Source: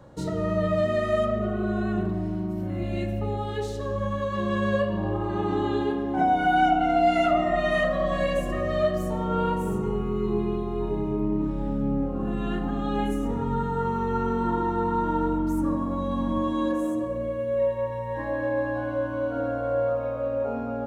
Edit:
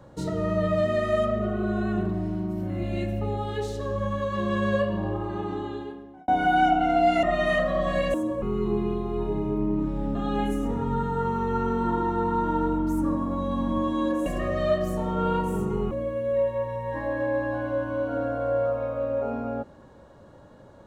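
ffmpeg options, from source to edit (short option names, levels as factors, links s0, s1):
-filter_complex "[0:a]asplit=8[s0][s1][s2][s3][s4][s5][s6][s7];[s0]atrim=end=6.28,asetpts=PTS-STARTPTS,afade=t=out:st=4.89:d=1.39[s8];[s1]atrim=start=6.28:end=7.232,asetpts=PTS-STARTPTS,afade=t=in:d=0.004:c=hsin[s9];[s2]atrim=start=7.478:end=8.392[s10];[s3]atrim=start=16.858:end=17.142[s11];[s4]atrim=start=10.038:end=11.772[s12];[s5]atrim=start=12.748:end=16.862[s13];[s6]atrim=start=8.388:end=10.042[s14];[s7]atrim=start=17.138[s15];[s8][s9]concat=n=2:v=0:a=1[s16];[s16][s10]acrossfade=d=0.004:c1=hsin:c2=hsin[s17];[s17][s11]acrossfade=d=0.004:c1=hsin:c2=hsin[s18];[s18][s12]acrossfade=d=0.004:c1=hsin:c2=hsin[s19];[s19][s13]acrossfade=d=0.004:c1=hsin:c2=hsin[s20];[s20][s14]acrossfade=d=0.004:c1=hsin:c2=hsin[s21];[s21][s15]acrossfade=d=0.004:c1=hsin:c2=hsin"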